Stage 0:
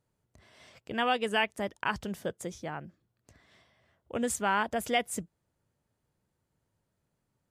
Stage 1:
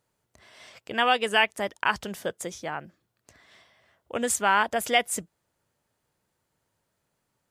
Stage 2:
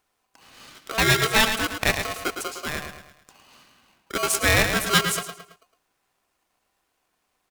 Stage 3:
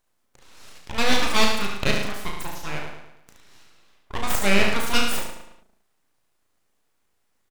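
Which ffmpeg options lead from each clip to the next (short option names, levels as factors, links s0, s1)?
-af "lowshelf=f=350:g=-11,volume=2.37"
-filter_complex "[0:a]asplit=2[s0][s1];[s1]adelay=110,lowpass=f=4600:p=1,volume=0.447,asplit=2[s2][s3];[s3]adelay=110,lowpass=f=4600:p=1,volume=0.44,asplit=2[s4][s5];[s5]adelay=110,lowpass=f=4600:p=1,volume=0.44,asplit=2[s6][s7];[s7]adelay=110,lowpass=f=4600:p=1,volume=0.44,asplit=2[s8][s9];[s9]adelay=110,lowpass=f=4600:p=1,volume=0.44[s10];[s2][s4][s6][s8][s10]amix=inputs=5:normalize=0[s11];[s0][s11]amix=inputs=2:normalize=0,aeval=exprs='val(0)*sgn(sin(2*PI*890*n/s))':c=same,volume=1.33"
-filter_complex "[0:a]aeval=exprs='abs(val(0))':c=same,asplit=2[s0][s1];[s1]aecho=0:1:35|72:0.562|0.531[s2];[s0][s2]amix=inputs=2:normalize=0"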